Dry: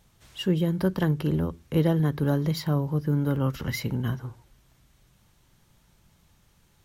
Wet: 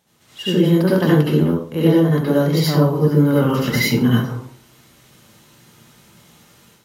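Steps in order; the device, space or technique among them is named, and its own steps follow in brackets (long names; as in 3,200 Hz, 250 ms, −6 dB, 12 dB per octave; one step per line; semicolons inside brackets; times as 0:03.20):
far laptop microphone (convolution reverb RT60 0.40 s, pre-delay 64 ms, DRR −6 dB; high-pass filter 180 Hz 12 dB per octave; automatic gain control gain up to 10 dB)
level −1 dB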